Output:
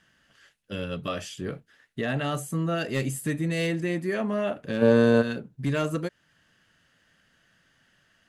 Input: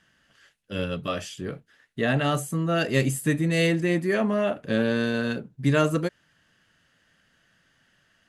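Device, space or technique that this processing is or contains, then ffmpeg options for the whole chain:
clipper into limiter: -filter_complex "[0:a]asoftclip=type=hard:threshold=-14dB,alimiter=limit=-19dB:level=0:latency=1:release=303,asplit=3[a][b][c];[a]afade=t=out:st=4.81:d=0.02[d];[b]equalizer=f=125:t=o:w=1:g=10,equalizer=f=250:t=o:w=1:g=5,equalizer=f=500:t=o:w=1:g=11,equalizer=f=1k:t=o:w=1:g=10,equalizer=f=8k:t=o:w=1:g=7,afade=t=in:st=4.81:d=0.02,afade=t=out:st=5.21:d=0.02[e];[c]afade=t=in:st=5.21:d=0.02[f];[d][e][f]amix=inputs=3:normalize=0"

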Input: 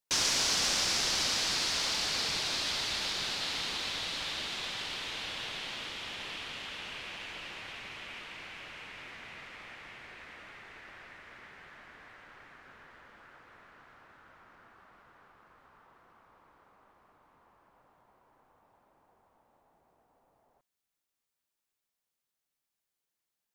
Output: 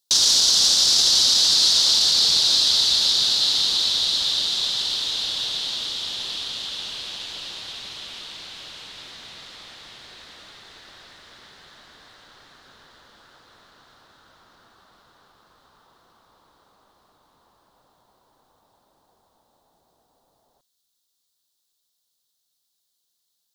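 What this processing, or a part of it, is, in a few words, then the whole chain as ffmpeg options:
over-bright horn tweeter: -af "highshelf=f=3k:t=q:w=3:g=8.5,alimiter=limit=-11.5dB:level=0:latency=1:release=16,volume=3.5dB"

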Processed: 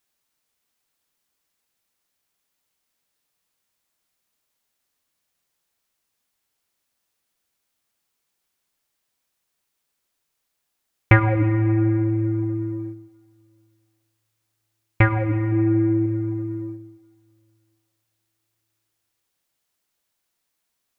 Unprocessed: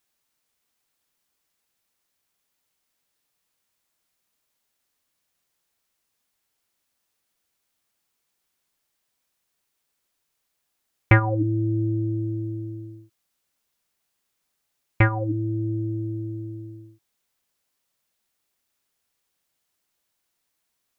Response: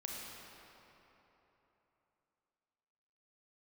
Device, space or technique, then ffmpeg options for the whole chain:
keyed gated reverb: -filter_complex "[0:a]asettb=1/sr,asplit=3[a][b][c];[a]atrim=end=15.524[d];[b]atrim=start=15.52:end=16.06,asetpts=PTS-STARTPTS,afade=t=in:d=0.004:c=qsin,afade=t=out:st=0.536:d=0.004:c=qsin,equalizer=f=280:t=o:w=1.1:g=6.5[e];[c]atrim=start=16.056[f];[d][e]acrossfade=d=0.004:c1=hsin:c2=qsin[g];[g][f]acrossfade=d=0.004:c1=qsin:c2=hsin,asplit=3[h][i][j];[1:a]atrim=start_sample=2205[k];[i][k]afir=irnorm=-1:irlink=0[l];[j]apad=whole_len=925627[m];[l][m]sidechaingate=range=-11dB:threshold=-38dB:ratio=16:detection=peak,volume=-4dB[n];[h][n]amix=inputs=2:normalize=0,volume=-1dB"

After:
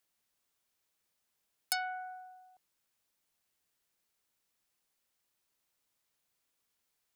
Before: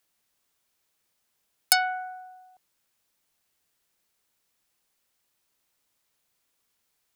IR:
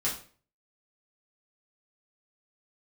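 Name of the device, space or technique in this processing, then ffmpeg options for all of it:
soft clipper into limiter: -af "asoftclip=type=tanh:threshold=-4dB,alimiter=limit=-12dB:level=0:latency=1:release=408,volume=-6dB"

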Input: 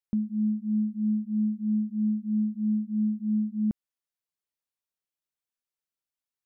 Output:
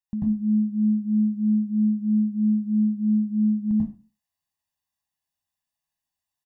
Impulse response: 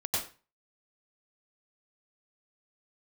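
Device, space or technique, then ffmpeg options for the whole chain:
microphone above a desk: -filter_complex "[0:a]aecho=1:1:1.1:0.82[a];[1:a]atrim=start_sample=2205[b];[a][b]afir=irnorm=-1:irlink=0,volume=-3dB"

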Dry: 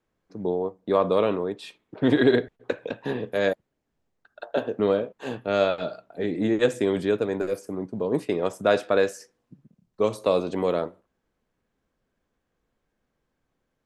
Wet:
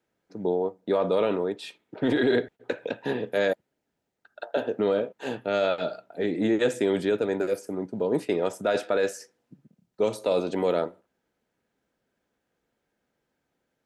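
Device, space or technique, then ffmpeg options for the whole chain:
PA system with an anti-feedback notch: -af "highpass=f=190:p=1,asuperstop=centerf=1100:order=4:qfactor=7.8,alimiter=limit=-16dB:level=0:latency=1:release=11,volume=1.5dB"

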